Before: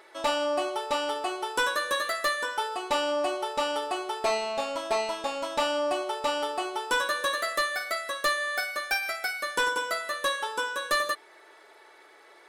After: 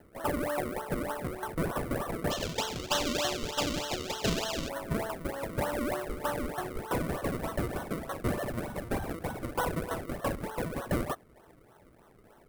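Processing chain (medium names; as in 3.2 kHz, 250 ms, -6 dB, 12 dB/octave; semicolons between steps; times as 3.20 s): decimation with a swept rate 36×, swing 100% 3.3 Hz; high-order bell 4.4 kHz -10 dB, from 2.30 s +8 dB, from 4.68 s -8 dB; trim -4 dB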